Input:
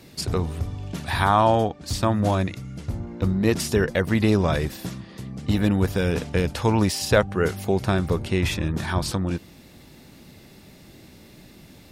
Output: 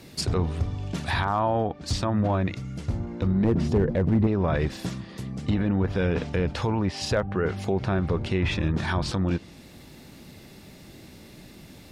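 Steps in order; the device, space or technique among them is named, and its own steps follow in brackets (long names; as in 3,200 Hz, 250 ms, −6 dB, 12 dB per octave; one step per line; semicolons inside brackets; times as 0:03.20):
treble cut that deepens with the level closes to 2,000 Hz, closed at −16.5 dBFS
0:03.44–0:04.27: tilt shelving filter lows +9 dB, about 860 Hz
clipper into limiter (hard clipping −8.5 dBFS, distortion −16 dB; brickwall limiter −16.5 dBFS, peak gain reduction 8 dB)
level +1 dB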